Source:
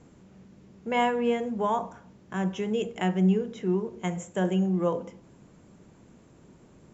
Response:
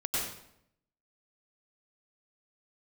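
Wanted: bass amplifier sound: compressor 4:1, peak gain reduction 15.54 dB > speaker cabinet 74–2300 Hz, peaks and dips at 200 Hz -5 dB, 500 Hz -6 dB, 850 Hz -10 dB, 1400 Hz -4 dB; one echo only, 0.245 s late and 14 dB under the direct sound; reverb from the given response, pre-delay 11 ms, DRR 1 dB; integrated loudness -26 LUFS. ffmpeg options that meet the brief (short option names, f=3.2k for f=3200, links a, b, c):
-filter_complex "[0:a]aecho=1:1:245:0.2,asplit=2[a][b];[1:a]atrim=start_sample=2205,adelay=11[c];[b][c]afir=irnorm=-1:irlink=0,volume=-8dB[d];[a][d]amix=inputs=2:normalize=0,acompressor=threshold=-34dB:ratio=4,highpass=f=74:w=0.5412,highpass=f=74:w=1.3066,equalizer=f=200:t=q:w=4:g=-5,equalizer=f=500:t=q:w=4:g=-6,equalizer=f=850:t=q:w=4:g=-10,equalizer=f=1.4k:t=q:w=4:g=-4,lowpass=f=2.3k:w=0.5412,lowpass=f=2.3k:w=1.3066,volume=14dB"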